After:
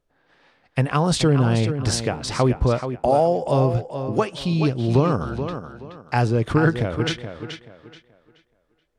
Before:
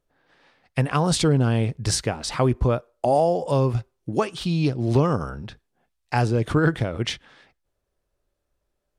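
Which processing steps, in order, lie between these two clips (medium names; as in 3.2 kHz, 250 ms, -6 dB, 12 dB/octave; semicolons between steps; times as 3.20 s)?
treble shelf 8.3 kHz -7 dB; tape echo 428 ms, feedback 30%, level -8 dB, low-pass 5.5 kHz; trim +1.5 dB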